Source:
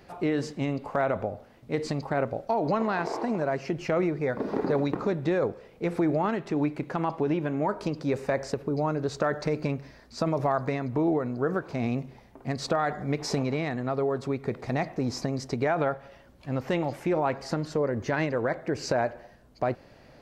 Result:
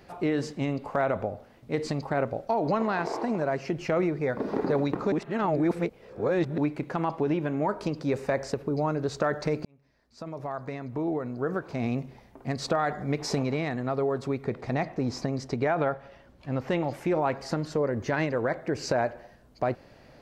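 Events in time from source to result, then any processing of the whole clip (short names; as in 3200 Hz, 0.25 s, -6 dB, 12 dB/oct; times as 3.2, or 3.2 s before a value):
5.12–6.58 reverse
9.65–12 fade in
14.44–16.91 high shelf 8000 Hz -9.5 dB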